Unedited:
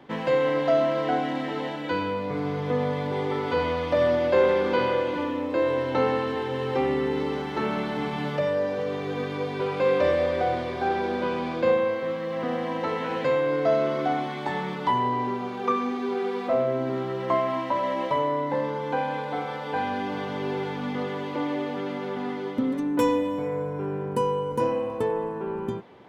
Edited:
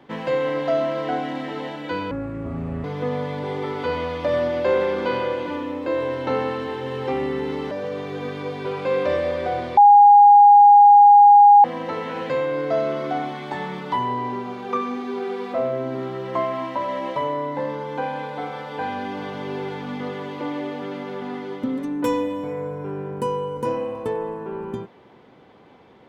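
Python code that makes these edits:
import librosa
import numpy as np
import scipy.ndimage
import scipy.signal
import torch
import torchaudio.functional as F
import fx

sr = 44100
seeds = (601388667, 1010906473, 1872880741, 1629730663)

y = fx.edit(x, sr, fx.speed_span(start_s=2.11, length_s=0.41, speed=0.56),
    fx.cut(start_s=7.39, length_s=1.27),
    fx.bleep(start_s=10.72, length_s=1.87, hz=819.0, db=-6.5), tone=tone)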